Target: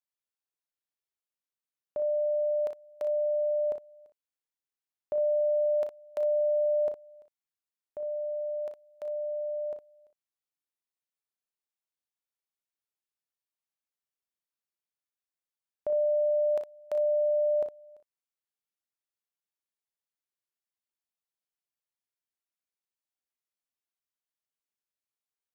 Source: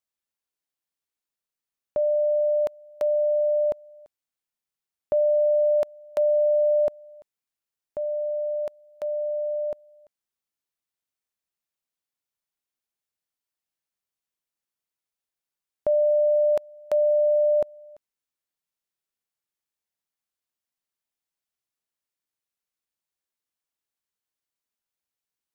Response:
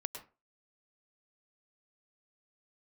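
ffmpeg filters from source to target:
-filter_complex "[0:a]bass=f=250:g=-5,treble=f=4000:g=-1,asplit=2[s0][s1];[s1]aecho=0:1:35|60:0.266|0.376[s2];[s0][s2]amix=inputs=2:normalize=0,volume=0.398"

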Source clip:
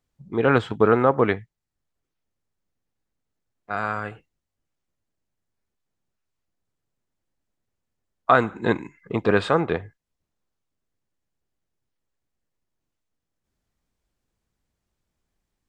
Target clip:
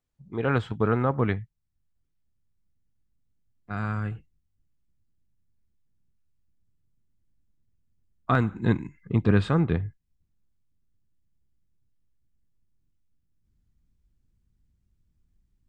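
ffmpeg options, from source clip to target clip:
-af "asubboost=boost=9.5:cutoff=200,volume=0.473"

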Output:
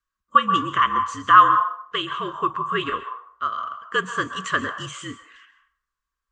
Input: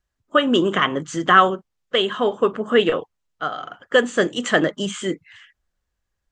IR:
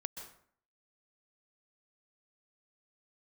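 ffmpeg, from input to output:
-filter_complex "[0:a]afreqshift=-57,asplit=2[s0][s1];[s1]highpass=f=1100:t=q:w=11[s2];[1:a]atrim=start_sample=2205[s3];[s2][s3]afir=irnorm=-1:irlink=0,volume=1.12[s4];[s0][s4]amix=inputs=2:normalize=0,volume=0.282"

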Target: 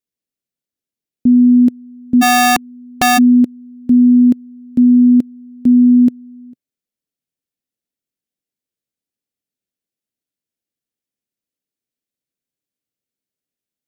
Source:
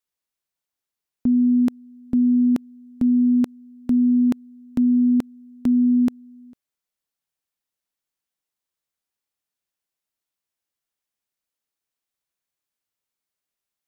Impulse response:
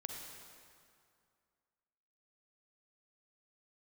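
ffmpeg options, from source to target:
-filter_complex "[0:a]equalizer=f=125:t=o:w=1:g=6,equalizer=f=250:t=o:w=1:g=10,equalizer=f=500:t=o:w=1:g=5,equalizer=f=1000:t=o:w=1:g=-10,asplit=3[s0][s1][s2];[s0]afade=t=out:st=2.21:d=0.02[s3];[s1]aeval=exprs='(mod(1.68*val(0)+1,2)-1)/1.68':c=same,afade=t=in:st=2.21:d=0.02,afade=t=out:st=3.17:d=0.02[s4];[s2]afade=t=in:st=3.17:d=0.02[s5];[s3][s4][s5]amix=inputs=3:normalize=0,volume=0.708"

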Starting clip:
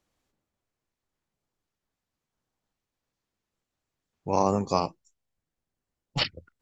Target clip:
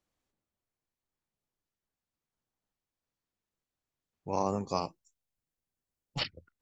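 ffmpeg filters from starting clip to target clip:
-filter_complex "[0:a]asettb=1/sr,asplit=3[s0][s1][s2];[s0]atrim=end=4.754[s3];[s1]atrim=start=4.75:end=6.18,asetpts=PTS-STARTPTS,afade=t=in:d=0.004:c=qsin,afade=t=out:st=1.426:d=0.004:c=qsin,highshelf=f=7000:g=8[s4];[s2]atrim=start=6.176[s5];[s3][s4]acrossfade=d=0.004:c1=hsin:c2=qsin[s6];[s6][s5]acrossfade=d=0.004:c1=qsin:c2=hsin,volume=0.447"

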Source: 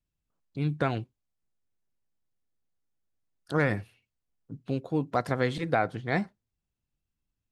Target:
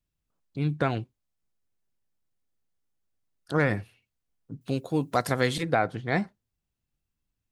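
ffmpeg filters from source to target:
-filter_complex "[0:a]asettb=1/sr,asplit=3[s0][s1][s2];[s0]atrim=end=4.614[s3];[s1]atrim=start=4.61:end=5.63,asetpts=PTS-STARTPTS,afade=t=in:d=0.004:c=qsin,afade=t=out:st=1.016:d=0.004:c=qsin,aemphasis=mode=production:type=75kf[s4];[s2]atrim=start=5.626[s5];[s3][s4]acrossfade=d=0.004:c1=hsin:c2=qsin[s6];[s6][s5]acrossfade=d=0.004:c1=qsin:c2=hsin,volume=1.19"

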